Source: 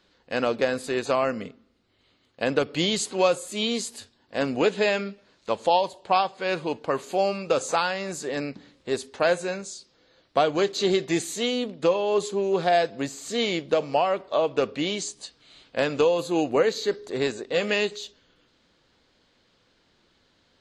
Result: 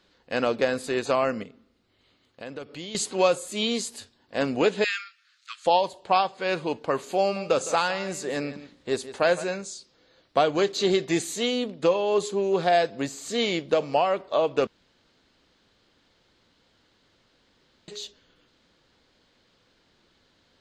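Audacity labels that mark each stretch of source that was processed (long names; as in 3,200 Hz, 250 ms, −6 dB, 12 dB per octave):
1.430000	2.950000	downward compressor 2 to 1, threshold −45 dBFS
4.840000	5.660000	Butterworth high-pass 1,200 Hz 96 dB per octave
7.200000	9.440000	single-tap delay 161 ms −14.5 dB
14.670000	17.880000	fill with room tone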